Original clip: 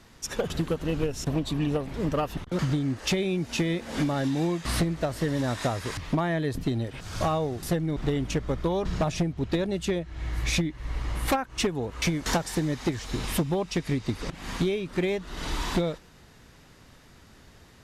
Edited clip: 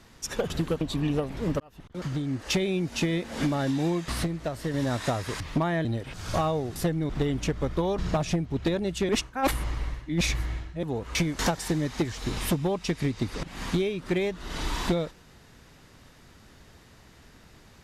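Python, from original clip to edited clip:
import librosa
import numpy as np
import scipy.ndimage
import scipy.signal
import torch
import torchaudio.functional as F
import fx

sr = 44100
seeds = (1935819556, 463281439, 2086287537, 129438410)

y = fx.edit(x, sr, fx.cut(start_s=0.81, length_s=0.57),
    fx.fade_in_span(start_s=2.17, length_s=0.91),
    fx.clip_gain(start_s=4.69, length_s=0.62, db=-3.5),
    fx.cut(start_s=6.42, length_s=0.3),
    fx.reverse_span(start_s=9.96, length_s=1.74), tone=tone)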